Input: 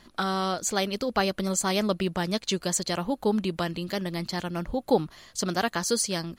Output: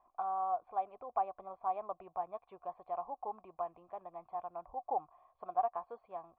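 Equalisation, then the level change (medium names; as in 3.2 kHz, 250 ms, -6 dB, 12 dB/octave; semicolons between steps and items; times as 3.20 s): cascade formant filter a; peaking EQ 200 Hz -12.5 dB 1 oct; peaking EQ 3.5 kHz -3 dB 0.24 oct; +2.5 dB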